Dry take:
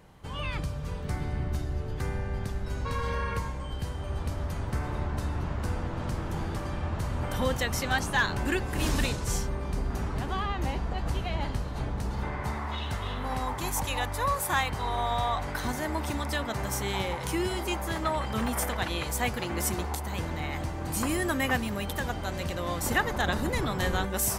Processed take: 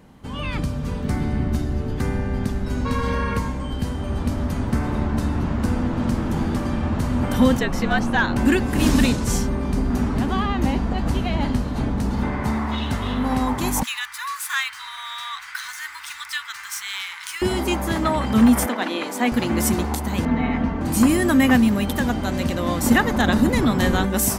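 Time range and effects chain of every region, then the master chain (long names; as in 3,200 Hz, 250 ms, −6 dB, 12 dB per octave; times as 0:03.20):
0:07.59–0:08.36: parametric band 13,000 Hz −14 dB 2 octaves + frequency shifter −57 Hz
0:13.83–0:17.42: running median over 3 samples + inverse Chebyshev high-pass filter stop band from 660 Hz
0:18.66–0:19.32: high-pass filter 250 Hz 24 dB per octave + high-shelf EQ 5,600 Hz −10 dB
0:20.25–0:20.81: low-pass filter 2,300 Hz + comb filter 4.4 ms, depth 88%
whole clip: parametric band 240 Hz +13.5 dB 0.56 octaves; automatic gain control gain up to 3.5 dB; level +3 dB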